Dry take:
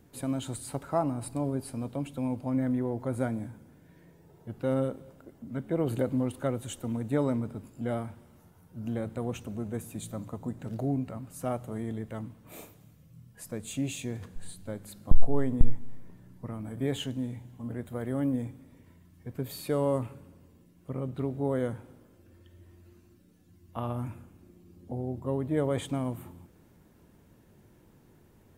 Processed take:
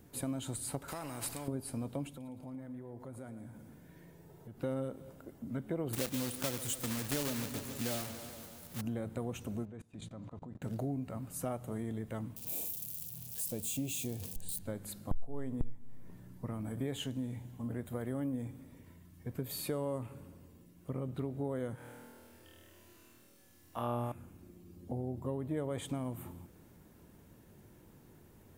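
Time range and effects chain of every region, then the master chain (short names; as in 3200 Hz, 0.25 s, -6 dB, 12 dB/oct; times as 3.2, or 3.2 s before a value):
0.88–1.48 compressor 2.5:1, threshold -37 dBFS + spectral compressor 2:1
2.09–4.62 compressor 3:1, threshold -48 dBFS + feedback echo 0.113 s, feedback 56%, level -12.5 dB
5.93–8.82 block floating point 3-bit + high shelf 2800 Hz +9 dB + warbling echo 0.142 s, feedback 66%, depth 93 cents, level -15.5 dB
9.65–10.62 LPF 3900 Hz + level quantiser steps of 23 dB
12.36–14.59 switching spikes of -35 dBFS + band shelf 1500 Hz -10.5 dB 1.2 oct
21.75–24.12 low shelf 320 Hz -11.5 dB + flutter echo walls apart 4.3 m, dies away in 1.4 s
whole clip: high shelf 8800 Hz +6 dB; compressor 3:1, threshold -35 dBFS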